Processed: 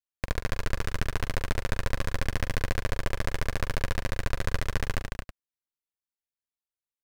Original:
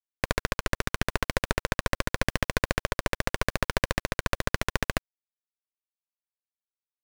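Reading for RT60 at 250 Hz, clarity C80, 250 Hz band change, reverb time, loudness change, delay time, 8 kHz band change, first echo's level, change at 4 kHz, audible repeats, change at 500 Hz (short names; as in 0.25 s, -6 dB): none, none, -3.5 dB, none, -3.5 dB, 44 ms, -5.0 dB, -11.5 dB, -5.0 dB, 3, -4.5 dB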